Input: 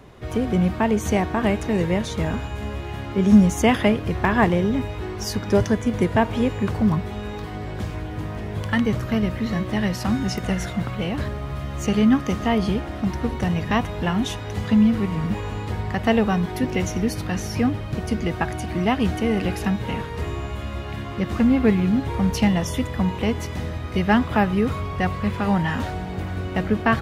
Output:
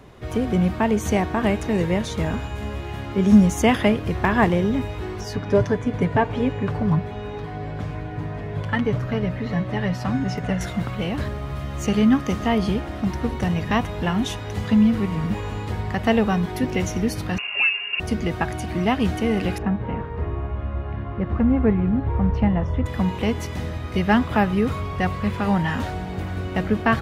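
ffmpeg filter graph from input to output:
-filter_complex "[0:a]asettb=1/sr,asplit=3[a][b][c];[a]atrim=end=5.214[d];[b]atrim=start=5.21:end=10.61,asetpts=PTS-STARTPTS,afade=t=in:d=0.004:c=qsin,afade=t=out:st=5.396:d=0.004:c=qsin,lowpass=f=2.1k:p=1,bandreject=f=330:w=6.2,aecho=1:1:6.9:0.55,atrim=end_sample=238140[e];[c]atrim=start=10.606[f];[d][e]acrossfade=d=0.004:c1=hsin:c2=qsin[g];[g][f]acrossfade=d=0.004:c1=qsin:c2=hsin,asettb=1/sr,asplit=3[h][i][j];[h]atrim=end=17.384[k];[i]atrim=start=17.38:end=18,asetpts=PTS-STARTPTS,afade=t=in:d=0.004:c=qsin,afade=t=out:st=0.616:d=0.004:c=qsin,lowpass=f=2.5k:t=q:w=0.5098,lowpass=f=2.5k:t=q:w=0.6013,lowpass=f=2.5k:t=q:w=0.9,lowpass=f=2.5k:t=q:w=2.563,afreqshift=-2900,acompressor=mode=upward:threshold=-28dB:ratio=2.5:attack=3.2:release=140:knee=2.83:detection=peak[l];[j]atrim=start=17.996[m];[k][l]acrossfade=d=0.004:c1=hsin:c2=qsin[n];[n][m]acrossfade=d=0.004:c1=qsin:c2=hsin,asettb=1/sr,asplit=3[o][p][q];[o]atrim=end=19.584[r];[p]atrim=start=19.58:end=22.86,asetpts=PTS-STARTPTS,afade=t=in:d=0.004:c=qsin,afade=t=out:st=3.276:d=0.004:c=qsin,lowpass=1.4k,asubboost=boost=3.5:cutoff=110[s];[q]atrim=start=22.856[t];[r][s]acrossfade=d=0.004:c1=hsin:c2=qsin[u];[u][t]acrossfade=d=0.004:c1=qsin:c2=hsin"

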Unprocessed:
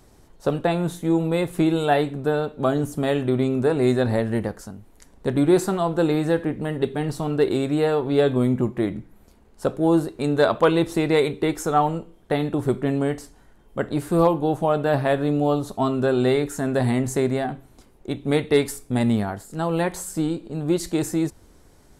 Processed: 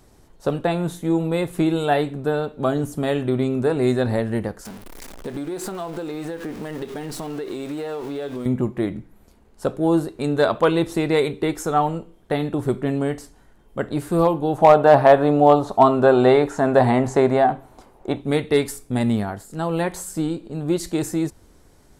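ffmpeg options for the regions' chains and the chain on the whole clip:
-filter_complex "[0:a]asettb=1/sr,asplit=3[a][b][c];[a]atrim=end=4.654[d];[b]atrim=start=4.65:end=8.46,asetpts=PTS-STARTPTS,afade=t=in:d=0.004:c=qsin,afade=t=out:st=3.806:d=0.004:c=qsin,aeval=exprs='val(0)+0.5*0.0237*sgn(val(0))':c=same,equalizer=f=98:w=1:g=-12.5,acompressor=threshold=-25dB:ratio=12:attack=3.2:release=140:knee=1:detection=peak[e];[c]atrim=start=8.456[f];[d][e]acrossfade=d=0.004:c1=hsin:c2=qsin[g];[g][f]acrossfade=d=0.004:c1=qsin:c2=hsin,asettb=1/sr,asplit=3[h][i][j];[h]atrim=end=14.584[k];[i]atrim=start=14.58:end=18.22,asetpts=PTS-STARTPTS,afade=t=in:d=0.004:c=qsin,afade=t=out:st=3.636:d=0.004:c=qsin,acrossover=split=7100[l][m];[m]acompressor=threshold=-56dB:ratio=4:attack=1:release=60[n];[l][n]amix=inputs=2:normalize=0,equalizer=f=820:w=0.77:g=12.5,asoftclip=type=hard:threshold=-3.5dB[o];[j]atrim=start=18.216[p];[k][o]acrossfade=d=0.004:c1=hsin:c2=qsin[q];[q][p]acrossfade=d=0.004:c1=qsin:c2=hsin"

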